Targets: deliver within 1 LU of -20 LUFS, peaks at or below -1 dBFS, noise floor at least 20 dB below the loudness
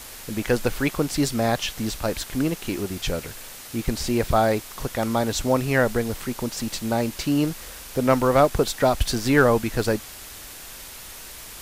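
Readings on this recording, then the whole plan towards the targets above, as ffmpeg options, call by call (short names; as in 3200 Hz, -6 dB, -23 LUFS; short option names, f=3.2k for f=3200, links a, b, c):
noise floor -40 dBFS; noise floor target -44 dBFS; loudness -23.5 LUFS; peak -6.5 dBFS; loudness target -20.0 LUFS
-> -af "afftdn=nr=6:nf=-40"
-af "volume=3.5dB"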